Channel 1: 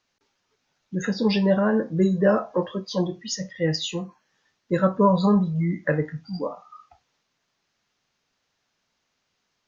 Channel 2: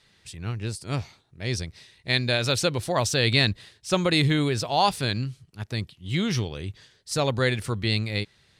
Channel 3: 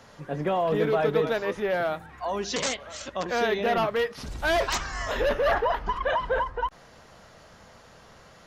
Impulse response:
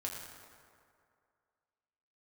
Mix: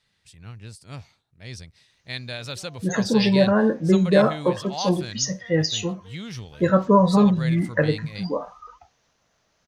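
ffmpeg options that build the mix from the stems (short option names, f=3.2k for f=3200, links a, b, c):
-filter_complex "[0:a]equalizer=f=6.1k:w=6.9:g=6.5,adelay=1900,volume=2.5dB[a];[1:a]equalizer=f=360:w=2.2:g=-6,volume=-9dB[b];[2:a]acompressor=threshold=-35dB:ratio=2.5,adelay=2100,volume=-19.5dB[c];[a][b][c]amix=inputs=3:normalize=0"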